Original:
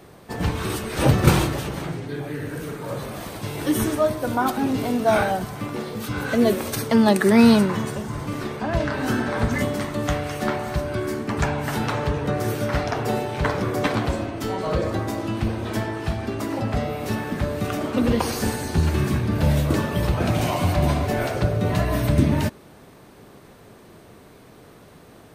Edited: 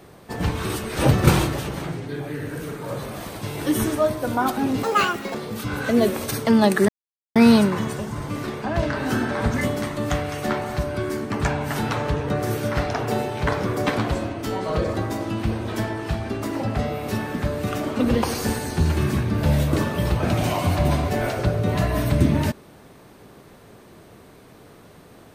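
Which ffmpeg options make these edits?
ffmpeg -i in.wav -filter_complex "[0:a]asplit=4[link_01][link_02][link_03][link_04];[link_01]atrim=end=4.834[link_05];[link_02]atrim=start=4.83:end=5.79,asetpts=PTS-STARTPTS,asetrate=82026,aresample=44100,atrim=end_sample=22761,asetpts=PTS-STARTPTS[link_06];[link_03]atrim=start=5.786:end=7.33,asetpts=PTS-STARTPTS,afade=type=out:start_time=1.54:duration=0.004:curve=hsin,apad=pad_dur=0.47[link_07];[link_04]atrim=start=7.33,asetpts=PTS-STARTPTS,afade=type=in:duration=0.004:curve=hsin[link_08];[link_05][link_06]acrossfade=duration=0.004:curve1=hsin:curve2=hsin[link_09];[link_07][link_08]concat=n=2:v=0:a=1[link_10];[link_09][link_10]acrossfade=duration=0.004:curve1=hsin:curve2=hsin" out.wav

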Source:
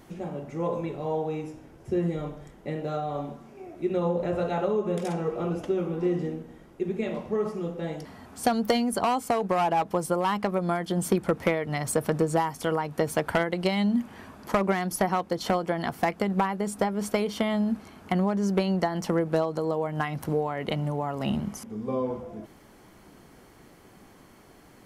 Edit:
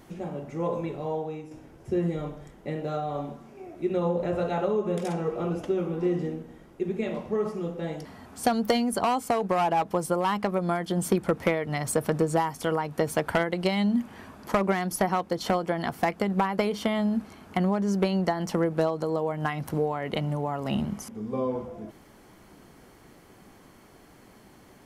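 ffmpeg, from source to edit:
ffmpeg -i in.wav -filter_complex "[0:a]asplit=3[link_01][link_02][link_03];[link_01]atrim=end=1.51,asetpts=PTS-STARTPTS,afade=type=out:start_time=0.97:duration=0.54:silence=0.398107[link_04];[link_02]atrim=start=1.51:end=16.582,asetpts=PTS-STARTPTS,afade=type=in:duration=0.004:curve=hsin:silence=0.398107[link_05];[link_03]atrim=start=17.128[link_06];[link_04][link_05]concat=n=2:v=0:a=1[link_07];[link_07][link_06]acrossfade=duration=0.004:curve1=hsin:curve2=hsin" out.wav

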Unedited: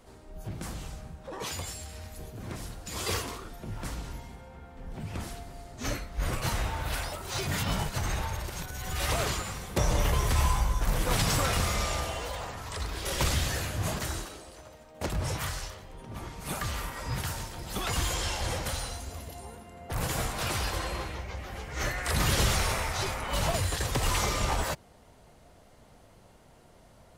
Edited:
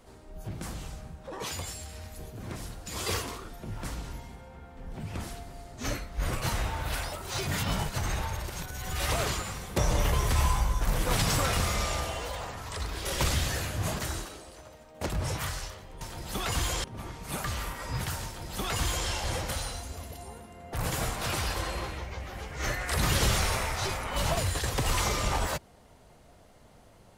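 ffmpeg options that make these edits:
ffmpeg -i in.wav -filter_complex "[0:a]asplit=3[link_01][link_02][link_03];[link_01]atrim=end=16.012[link_04];[link_02]atrim=start=17.418:end=18.252[link_05];[link_03]atrim=start=16.008[link_06];[link_04][link_05]acrossfade=duration=0.004:curve1=hsin:curve2=hsin[link_07];[link_07][link_06]acrossfade=duration=0.004:curve1=hsin:curve2=hsin" out.wav

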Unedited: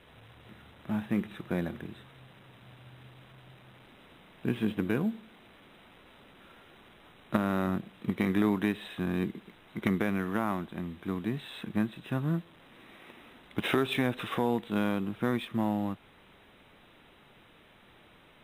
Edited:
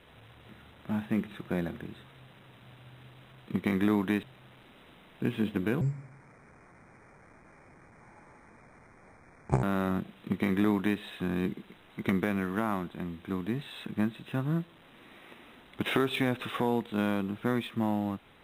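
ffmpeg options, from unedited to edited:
ffmpeg -i in.wav -filter_complex "[0:a]asplit=5[link_01][link_02][link_03][link_04][link_05];[link_01]atrim=end=3.462[link_06];[link_02]atrim=start=7.998:end=8.772[link_07];[link_03]atrim=start=3.458:end=5.044[link_08];[link_04]atrim=start=5.04:end=7.41,asetpts=PTS-STARTPTS,asetrate=27342,aresample=44100[link_09];[link_05]atrim=start=7.406[link_10];[link_06][link_07]acrossfade=duration=0.004:curve1=hsin:curve2=hsin[link_11];[link_11][link_08]acrossfade=duration=0.004:curve1=hsin:curve2=hsin[link_12];[link_12][link_09]acrossfade=duration=0.004:curve1=hsin:curve2=hsin[link_13];[link_13][link_10]acrossfade=duration=0.004:curve1=hsin:curve2=hsin" out.wav

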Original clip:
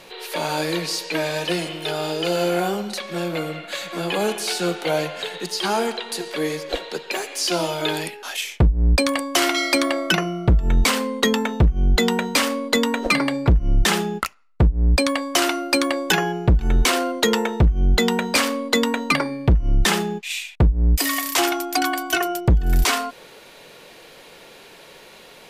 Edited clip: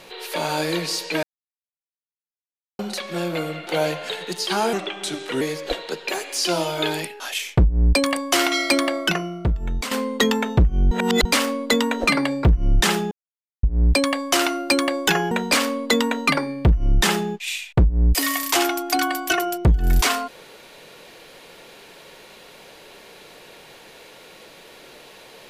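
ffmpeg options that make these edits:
ffmpeg -i in.wav -filter_complex "[0:a]asplit=12[link_01][link_02][link_03][link_04][link_05][link_06][link_07][link_08][link_09][link_10][link_11][link_12];[link_01]atrim=end=1.23,asetpts=PTS-STARTPTS,afade=type=out:start_time=1.226:duration=0.004:curve=hsin[link_13];[link_02]atrim=start=1.23:end=2.79,asetpts=PTS-STARTPTS,volume=0[link_14];[link_03]atrim=start=2.79:end=3.672,asetpts=PTS-STARTPTS,afade=type=in:duration=0.004:curve=hsin[link_15];[link_04]atrim=start=4.798:end=5.864[link_16];[link_05]atrim=start=5.86:end=6.44,asetpts=PTS-STARTPTS,asetrate=37485,aresample=44100[link_17];[link_06]atrim=start=6.436:end=10.94,asetpts=PTS-STARTPTS,afade=type=out:start_time=3.374:duration=1.13:silence=0.266073[link_18];[link_07]atrim=start=10.94:end=11.942,asetpts=PTS-STARTPTS,afade=type=in:duration=0.004:curve=hsin:silence=0.266073[link_19];[link_08]atrim=start=11.938:end=12.282,asetpts=PTS-STARTPTS,areverse[link_20];[link_09]atrim=start=12.278:end=14.14,asetpts=PTS-STARTPTS,afade=type=out:start_time=1.858:duration=0.004:curve=hsin[link_21];[link_10]atrim=start=14.14:end=14.66,asetpts=PTS-STARTPTS,volume=0[link_22];[link_11]atrim=start=14.66:end=16.342,asetpts=PTS-STARTPTS,afade=type=in:duration=0.004:curve=hsin[link_23];[link_12]atrim=start=18.138[link_24];[link_13][link_14][link_15]concat=n=3:v=0:a=1[link_25];[link_25][link_16]acrossfade=duration=0.004:curve1=hsin:curve2=hsin[link_26];[link_26][link_17]acrossfade=duration=0.004:curve1=hsin:curve2=hsin[link_27];[link_18][link_19]concat=n=2:v=0:a=1[link_28];[link_27][link_28]acrossfade=duration=0.004:curve1=hsin:curve2=hsin[link_29];[link_29][link_20]acrossfade=duration=0.004:curve1=hsin:curve2=hsin[link_30];[link_21][link_22][link_23]concat=n=3:v=0:a=1[link_31];[link_30][link_31]acrossfade=duration=0.004:curve1=hsin:curve2=hsin[link_32];[link_32][link_24]acrossfade=duration=0.004:curve1=hsin:curve2=hsin" out.wav

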